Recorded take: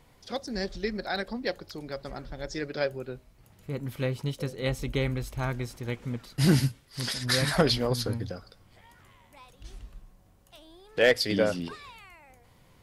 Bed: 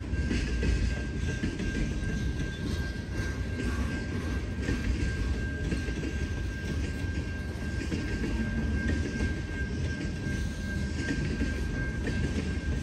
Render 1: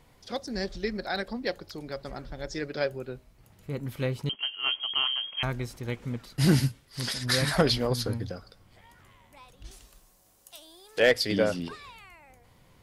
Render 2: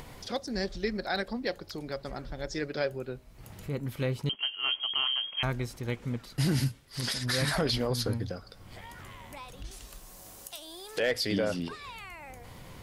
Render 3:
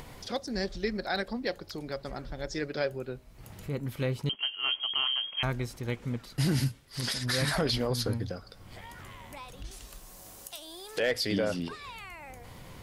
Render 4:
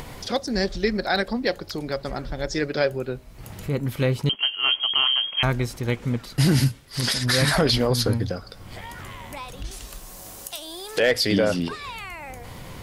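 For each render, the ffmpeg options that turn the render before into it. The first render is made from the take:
-filter_complex "[0:a]asettb=1/sr,asplit=3[s0][s1][s2];[s0]atrim=end=4.294[s3];[s1]atrim=start=4.29:end=5.43,asetpts=PTS-STARTPTS,afade=t=in:d=0.004:c=qsin,afade=t=out:st=1.136:d=0.004:c=qsin,lowpass=f=2800:t=q:w=0.5098,lowpass=f=2800:t=q:w=0.6013,lowpass=f=2800:t=q:w=0.9,lowpass=f=2800:t=q:w=2.563,afreqshift=-3300[s4];[s2]atrim=start=5.426[s5];[s3][s4]acrossfade=d=0.004:c1=hsin:c2=qsin[s6];[s6][s5]acrossfade=d=0.004:c1=qsin:c2=hsin,asettb=1/sr,asplit=3[s7][s8][s9];[s7]atrim=end=9.714[s10];[s8]atrim=start=9.71:end=11,asetpts=PTS-STARTPTS,afade=t=in:d=0.004:c=qsin,afade=t=out:st=1.286:d=0.004:c=qsin,bass=f=250:g=-12,treble=f=4000:g=13[s11];[s9]atrim=start=10.996[s12];[s10][s11]acrossfade=d=0.004:c1=hsin:c2=qsin[s13];[s13][s12]acrossfade=d=0.004:c1=qsin:c2=hsin"
-af "alimiter=limit=0.112:level=0:latency=1:release=33,acompressor=mode=upward:threshold=0.0178:ratio=2.5"
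-af anull
-af "volume=2.66"

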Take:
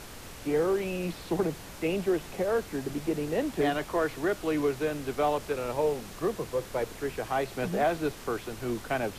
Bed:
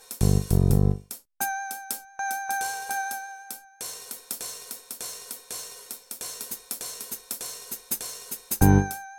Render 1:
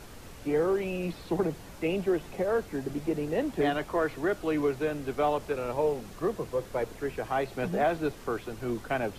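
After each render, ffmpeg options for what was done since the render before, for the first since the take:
-af "afftdn=nr=6:nf=-45"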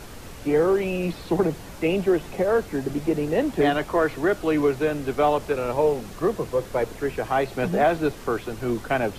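-af "volume=2.11"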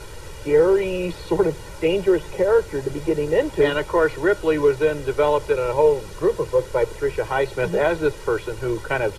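-af "lowpass=f=12000:w=0.5412,lowpass=f=12000:w=1.3066,aecho=1:1:2.1:0.85"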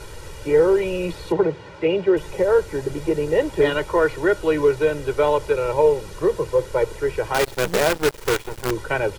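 -filter_complex "[0:a]asettb=1/sr,asplit=3[s0][s1][s2];[s0]atrim=end=1.324[s3];[s1]atrim=start=1.32:end=2.17,asetpts=PTS-STARTPTS,afade=t=in:d=0.004:c=qsin,afade=t=out:st=0.846:d=0.004:c=qsin,highpass=110,lowpass=3400[s4];[s2]atrim=start=2.166[s5];[s3][s4]acrossfade=d=0.004:c1=hsin:c2=qsin[s6];[s6][s5]acrossfade=d=0.004:c1=qsin:c2=hsin,asettb=1/sr,asplit=3[s7][s8][s9];[s7]atrim=end=7.344[s10];[s8]atrim=start=7.34:end=8.71,asetpts=PTS-STARTPTS,afade=t=in:d=0.004:c=qsin,afade=t=out:st=1.366:d=0.004:c=qsin,acrusher=bits=4:dc=4:mix=0:aa=0.000001[s11];[s9]atrim=start=8.706[s12];[s10][s11]acrossfade=d=0.004:c1=hsin:c2=qsin[s13];[s13][s12]acrossfade=d=0.004:c1=qsin:c2=hsin"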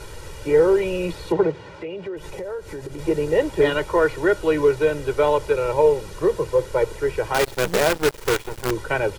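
-filter_complex "[0:a]asettb=1/sr,asplit=3[s0][s1][s2];[s0]atrim=end=1.514[s3];[s1]atrim=start=1.51:end=2.99,asetpts=PTS-STARTPTS,afade=t=in:d=0.004:c=qsin,afade=t=out:st=1.476:d=0.004:c=qsin,acompressor=threshold=0.0316:ratio=4:attack=3.2:release=140:knee=1:detection=peak[s4];[s2]atrim=start=2.986[s5];[s3][s4]acrossfade=d=0.004:c1=hsin:c2=qsin[s6];[s6][s5]acrossfade=d=0.004:c1=qsin:c2=hsin"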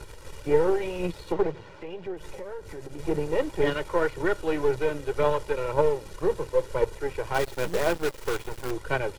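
-af "aeval=exprs='if(lt(val(0),0),0.447*val(0),val(0))':c=same,flanger=delay=0:depth=3.8:regen=70:speed=1.9:shape=sinusoidal"

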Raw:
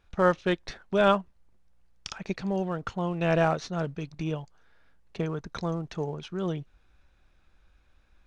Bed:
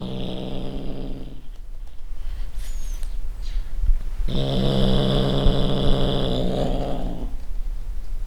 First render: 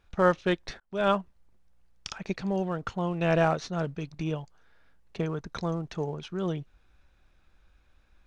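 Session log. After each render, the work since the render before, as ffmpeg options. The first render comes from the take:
-filter_complex "[0:a]asplit=2[s0][s1];[s0]atrim=end=0.8,asetpts=PTS-STARTPTS,afade=t=out:st=0.796:d=0.004:c=hsin[s2];[s1]atrim=start=0.8,asetpts=PTS-STARTPTS,afade=t=in:d=0.4[s3];[s2][s3]concat=n=2:v=0:a=1"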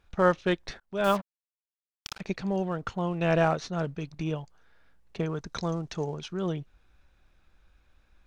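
-filter_complex "[0:a]asettb=1/sr,asplit=3[s0][s1][s2];[s0]atrim=end=1.044[s3];[s1]atrim=start=1.04:end=2.21,asetpts=PTS-STARTPTS,afade=t=in:d=0.004:c=qsin,afade=t=out:st=1.166:d=0.004:c=qsin,acrusher=bits=5:mix=0:aa=0.5[s4];[s2]atrim=start=2.206[s5];[s3][s4]acrossfade=d=0.004:c1=hsin:c2=qsin[s6];[s6][s5]acrossfade=d=0.004:c1=qsin:c2=hsin,asettb=1/sr,asplit=3[s7][s8][s9];[s7]atrim=end=5.354[s10];[s8]atrim=start=5.35:end=6.33,asetpts=PTS-STARTPTS,afade=t=in:d=0.004:c=qsin,afade=t=out:st=0.976:d=0.004:c=qsin,equalizer=f=6100:w=0.83:g=6.5[s11];[s9]atrim=start=6.326[s12];[s10][s11]acrossfade=d=0.004:c1=hsin:c2=qsin[s13];[s13][s12]acrossfade=d=0.004:c1=qsin:c2=hsin"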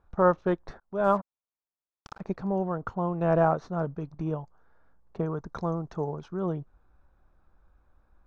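-af "lowpass=8600,highshelf=f=1700:t=q:w=1.5:g=-14"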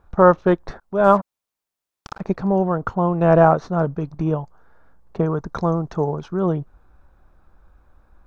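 -af "volume=2.99,alimiter=limit=0.891:level=0:latency=1"

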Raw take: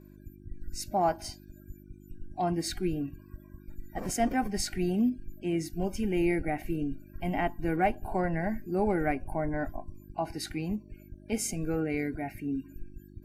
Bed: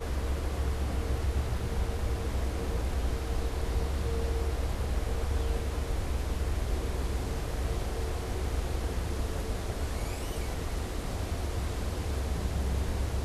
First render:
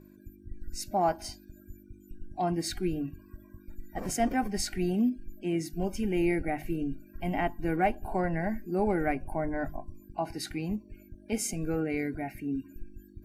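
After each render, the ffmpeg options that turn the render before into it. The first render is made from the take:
-af "bandreject=f=50:t=h:w=4,bandreject=f=100:t=h:w=4,bandreject=f=150:t=h:w=4"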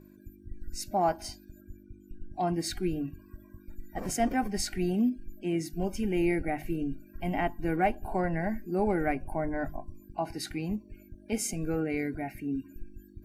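-filter_complex "[0:a]asettb=1/sr,asplit=3[s0][s1][s2];[s0]atrim=end=1.614[s3];[s1]atrim=start=1.61:end=2.34,asetpts=PTS-STARTPTS,afade=t=in:d=0.004:c=qsin,afade=t=out:st=0.726:d=0.004:c=qsin,aemphasis=mode=reproduction:type=cd[s4];[s2]atrim=start=2.336[s5];[s3][s4]acrossfade=d=0.004:c1=hsin:c2=qsin[s6];[s6][s5]acrossfade=d=0.004:c1=qsin:c2=hsin"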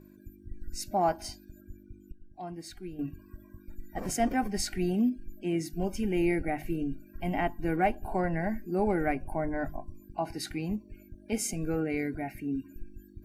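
-filter_complex "[0:a]asplit=3[s0][s1][s2];[s0]atrim=end=2.122[s3];[s1]atrim=start=2.118:end=2.992,asetpts=PTS-STARTPTS,volume=0.282[s4];[s2]atrim=start=2.988[s5];[s3][s4]acrossfade=d=0.004:c1=hsin:c2=hsin[s6];[s6][s5]acrossfade=d=0.004:c1=hsin:c2=hsin"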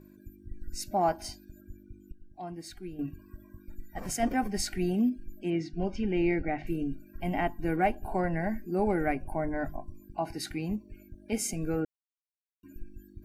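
-filter_complex "[0:a]asettb=1/sr,asplit=3[s0][s1][s2];[s0]atrim=end=3.834[s3];[s1]atrim=start=3.83:end=4.23,asetpts=PTS-STARTPTS,afade=t=in:d=0.004:c=qsin,afade=t=out:st=0.396:d=0.004:c=qsin,equalizer=f=360:w=0.78:g=-6.5[s4];[s2]atrim=start=4.226[s5];[s3][s4]acrossfade=d=0.004:c1=hsin:c2=qsin[s6];[s6][s5]acrossfade=d=0.004:c1=qsin:c2=hsin,asettb=1/sr,asplit=3[s7][s8][s9];[s7]atrim=end=5.504[s10];[s8]atrim=start=5.5:end=6.67,asetpts=PTS-STARTPTS,afade=t=in:d=0.004:c=qsin,afade=t=out:st=1.166:d=0.004:c=qsin,lowpass=f=4900:w=0.5412,lowpass=f=4900:w=1.3066[s11];[s9]atrim=start=6.666[s12];[s10][s11]acrossfade=d=0.004:c1=hsin:c2=qsin[s13];[s13][s12]acrossfade=d=0.004:c1=qsin:c2=hsin,asplit=3[s14][s15][s16];[s14]atrim=end=11.85,asetpts=PTS-STARTPTS,afade=t=out:st=11.846:d=0.004:c=hsin[s17];[s15]atrim=start=11.85:end=12.63,asetpts=PTS-STARTPTS,volume=0[s18];[s16]atrim=start=12.63,asetpts=PTS-STARTPTS,afade=t=in:d=0.004:c=hsin[s19];[s17][s18][s19]concat=n=3:v=0:a=1"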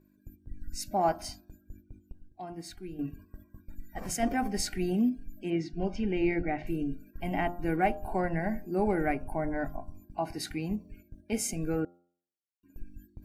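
-af "agate=range=0.316:threshold=0.00398:ratio=16:detection=peak,bandreject=f=87.43:t=h:w=4,bandreject=f=174.86:t=h:w=4,bandreject=f=262.29:t=h:w=4,bandreject=f=349.72:t=h:w=4,bandreject=f=437.15:t=h:w=4,bandreject=f=524.58:t=h:w=4,bandreject=f=612.01:t=h:w=4,bandreject=f=699.44:t=h:w=4,bandreject=f=786.87:t=h:w=4,bandreject=f=874.3:t=h:w=4,bandreject=f=961.73:t=h:w=4,bandreject=f=1049.16:t=h:w=4,bandreject=f=1136.59:t=h:w=4,bandreject=f=1224.02:t=h:w=4,bandreject=f=1311.45:t=h:w=4,bandreject=f=1398.88:t=h:w=4"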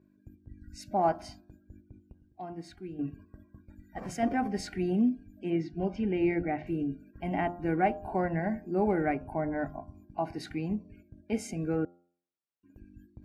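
-af "highpass=67,aemphasis=mode=reproduction:type=75fm"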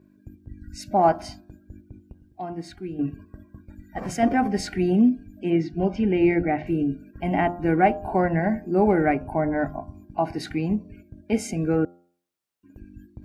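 -af "volume=2.51"

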